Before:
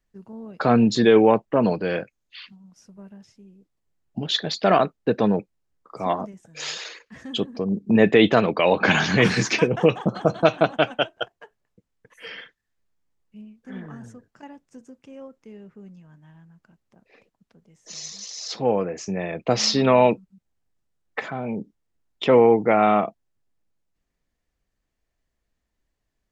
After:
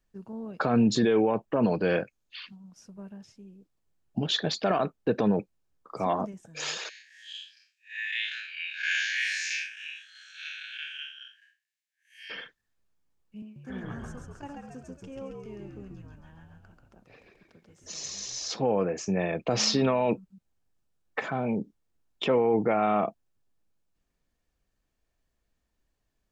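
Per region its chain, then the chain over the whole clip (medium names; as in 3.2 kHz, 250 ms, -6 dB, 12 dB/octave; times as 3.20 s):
6.89–12.30 s: spectral blur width 141 ms + steep high-pass 1.6 kHz 96 dB/octave
13.42–18.54 s: high-pass 190 Hz + frequency-shifting echo 136 ms, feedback 57%, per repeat -71 Hz, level -3 dB
whole clip: band-stop 2 kHz, Q 13; dynamic bell 4.3 kHz, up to -4 dB, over -42 dBFS, Q 1.3; peak limiter -15 dBFS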